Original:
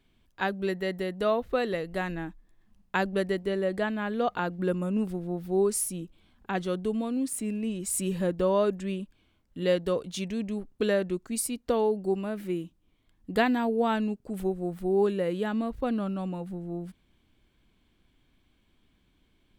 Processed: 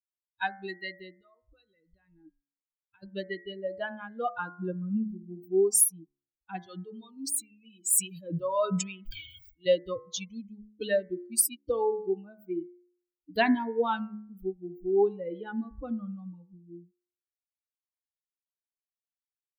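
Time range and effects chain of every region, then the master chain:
1.12–3.03 gate -56 dBFS, range -7 dB + compressor 8:1, threshold -35 dBFS
6.66–9.66 low shelf 270 Hz -11 dB + sustainer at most 24 dB/s
whole clip: per-bin expansion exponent 3; high shelf 7300 Hz +11.5 dB; de-hum 70.96 Hz, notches 31; gain +4.5 dB

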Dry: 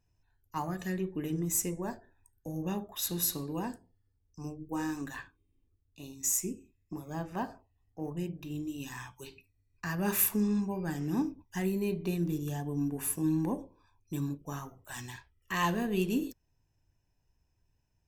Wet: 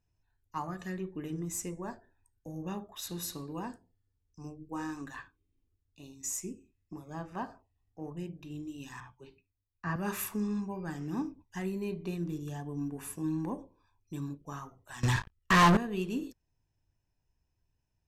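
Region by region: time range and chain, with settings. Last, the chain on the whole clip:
9–9.96 LPF 1300 Hz 6 dB/oct + three-band expander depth 70%
15.03–15.77 low shelf 170 Hz +10.5 dB + sample leveller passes 5
whole clip: Bessel low-pass 8300 Hz, order 2; dynamic EQ 1200 Hz, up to +6 dB, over -54 dBFS, Q 2.3; gain -4 dB

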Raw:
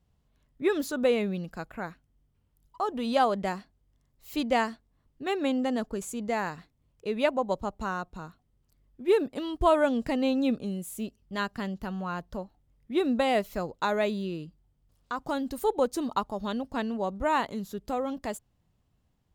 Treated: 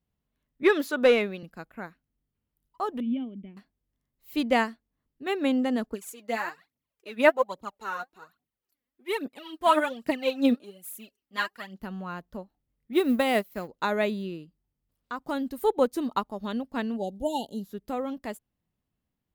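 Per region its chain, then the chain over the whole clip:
0.63–1.43 HPF 190 Hz + overdrive pedal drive 12 dB, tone 4400 Hz, clips at -13.5 dBFS
3–3.57 vocal tract filter i + low shelf 190 Hz +9 dB
5.93–11.8 HPF 650 Hz 6 dB/oct + phaser 1.2 Hz, delay 4.3 ms, feedback 70%
12.93–13.68 G.711 law mismatch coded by A + HPF 42 Hz + high shelf 9100 Hz +8.5 dB
16.96–17.63 brick-wall FIR band-stop 910–2800 Hz + bell 10000 Hz +6.5 dB 2.1 oct
whole clip: EQ curve 110 Hz 0 dB, 230 Hz +7 dB, 760 Hz +3 dB, 1100 Hz +4 dB, 2000 Hz +7 dB, 7100 Hz +1 dB, 13000 Hz +10 dB; upward expander 1.5:1, over -41 dBFS

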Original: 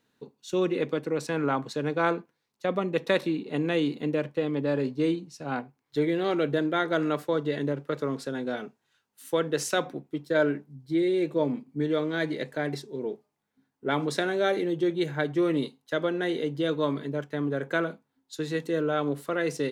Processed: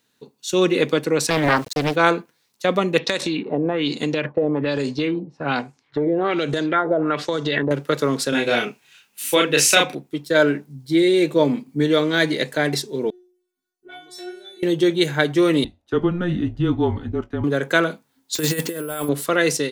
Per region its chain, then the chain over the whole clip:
1.3–1.96 gate -39 dBFS, range -15 dB + sample gate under -50.5 dBFS + Doppler distortion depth 0.67 ms
2.98–7.71 compressor 12:1, threshold -27 dBFS + LFO low-pass sine 1.2 Hz 610–8000 Hz + hard clip -16.5 dBFS
8.29–9.95 bell 2500 Hz +12.5 dB 0.46 oct + doubler 34 ms -2.5 dB
13.1–14.63 bell 1200 Hz -8.5 dB 0.29 oct + compressor 1.5:1, threshold -34 dBFS + metallic resonator 360 Hz, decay 0.59 s, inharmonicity 0.002
15.64–17.44 band-pass 550 Hz, Q 1.1 + frequency shift -180 Hz + doubler 20 ms -14 dB
18.35–19.09 notch 3900 Hz, Q 7.5 + negative-ratio compressor -32 dBFS, ratio -0.5 + careless resampling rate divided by 4×, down none, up hold
whole clip: high shelf 2600 Hz +11.5 dB; AGC gain up to 9 dB

